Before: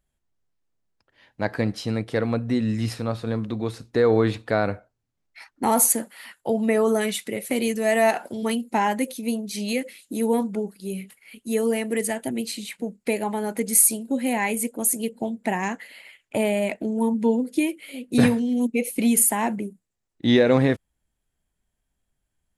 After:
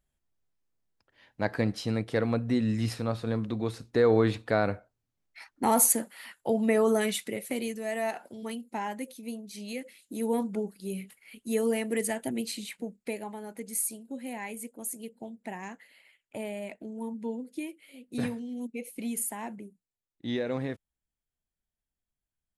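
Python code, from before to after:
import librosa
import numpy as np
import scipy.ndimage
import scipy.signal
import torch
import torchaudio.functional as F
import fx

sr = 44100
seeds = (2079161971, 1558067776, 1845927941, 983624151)

y = fx.gain(x, sr, db=fx.line((7.21, -3.5), (7.86, -12.0), (9.69, -12.0), (10.56, -4.5), (12.64, -4.5), (13.4, -14.0)))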